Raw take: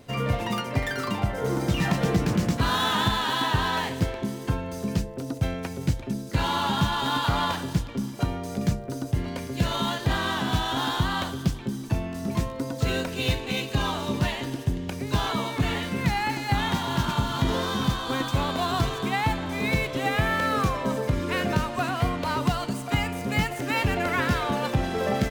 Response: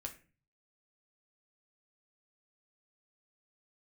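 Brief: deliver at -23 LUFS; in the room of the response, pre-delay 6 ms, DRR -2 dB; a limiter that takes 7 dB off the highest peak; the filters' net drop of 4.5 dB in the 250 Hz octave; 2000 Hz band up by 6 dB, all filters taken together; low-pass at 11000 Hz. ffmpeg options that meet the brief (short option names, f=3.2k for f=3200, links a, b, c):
-filter_complex "[0:a]lowpass=11k,equalizer=f=250:t=o:g=-6.5,equalizer=f=2k:t=o:g=7.5,alimiter=limit=-16dB:level=0:latency=1,asplit=2[a][b];[1:a]atrim=start_sample=2205,adelay=6[c];[b][c]afir=irnorm=-1:irlink=0,volume=5dB[d];[a][d]amix=inputs=2:normalize=0,volume=-0.5dB"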